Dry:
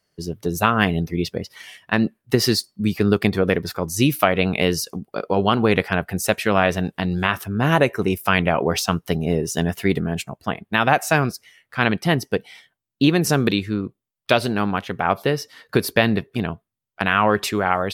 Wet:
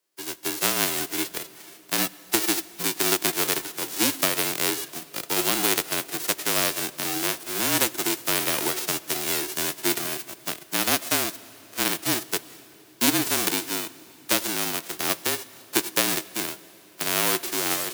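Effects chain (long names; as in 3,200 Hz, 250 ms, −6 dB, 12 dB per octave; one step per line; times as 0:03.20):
spectral envelope flattened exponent 0.1
high-pass filter 280 Hz 12 dB per octave
parametric band 360 Hz +12.5 dB 0.63 octaves
frequency shifter −37 Hz
on a send: convolution reverb RT60 4.3 s, pre-delay 55 ms, DRR 19 dB
on the sum: level −6 dB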